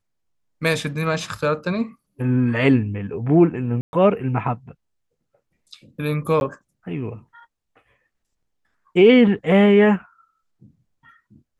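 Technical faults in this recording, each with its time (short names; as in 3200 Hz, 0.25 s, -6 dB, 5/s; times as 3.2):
3.81–3.93 gap 0.121 s
6.4–6.41 gap 11 ms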